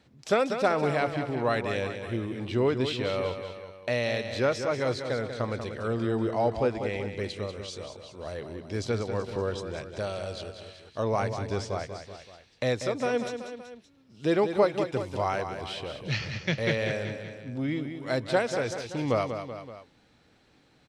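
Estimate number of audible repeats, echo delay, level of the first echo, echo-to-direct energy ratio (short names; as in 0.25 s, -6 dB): 3, 0.19 s, -8.5 dB, -7.0 dB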